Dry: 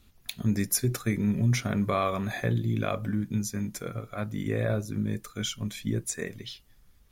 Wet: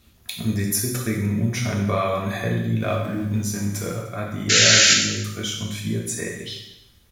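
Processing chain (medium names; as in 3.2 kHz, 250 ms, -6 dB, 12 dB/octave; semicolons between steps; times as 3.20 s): 2.80–4.00 s: companding laws mixed up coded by mu; high-pass 47 Hz; in parallel at -1.5 dB: compression, threshold -35 dBFS, peak gain reduction 14.5 dB; 4.49–4.94 s: on the sum: painted sound noise 1.3–7.4 kHz -17 dBFS; on a send: delay 299 ms -20.5 dB; on the sum: gated-style reverb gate 290 ms falling, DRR -1.5 dB; trim -1 dB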